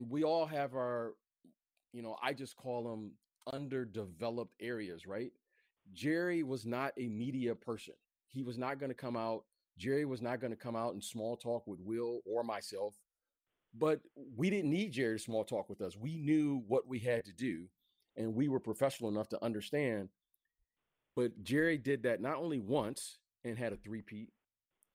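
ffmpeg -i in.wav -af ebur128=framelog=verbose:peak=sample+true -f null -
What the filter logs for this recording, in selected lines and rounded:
Integrated loudness:
  I:         -38.5 LUFS
  Threshold: -48.9 LUFS
Loudness range:
  LRA:         5.9 LU
  Threshold: -59.2 LUFS
  LRA low:   -42.7 LUFS
  LRA high:  -36.9 LUFS
Sample peak:
  Peak:      -19.8 dBFS
True peak:
  Peak:      -19.8 dBFS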